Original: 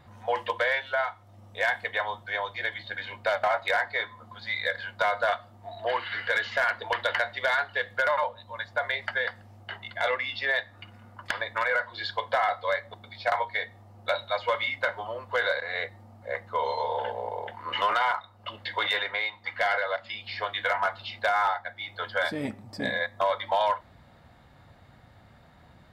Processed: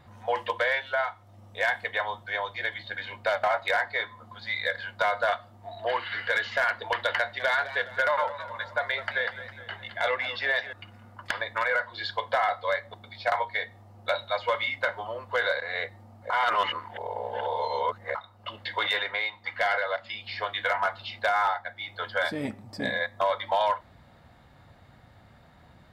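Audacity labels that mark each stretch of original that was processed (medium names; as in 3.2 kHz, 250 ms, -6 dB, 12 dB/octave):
7.190000	10.730000	modulated delay 207 ms, feedback 55%, depth 121 cents, level -13.5 dB
16.300000	18.150000	reverse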